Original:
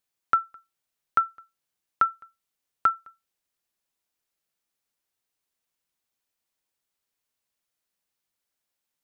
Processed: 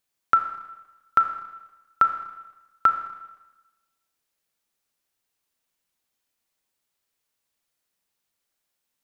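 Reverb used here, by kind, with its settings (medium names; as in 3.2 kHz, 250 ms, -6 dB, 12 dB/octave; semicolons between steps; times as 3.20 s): Schroeder reverb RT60 1.1 s, combs from 27 ms, DRR 7.5 dB; trim +3 dB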